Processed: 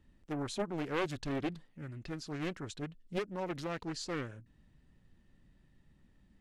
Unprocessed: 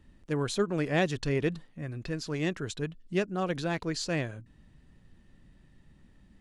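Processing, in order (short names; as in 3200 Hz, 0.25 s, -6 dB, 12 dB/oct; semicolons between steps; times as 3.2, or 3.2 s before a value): Doppler distortion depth 0.73 ms; gain -7 dB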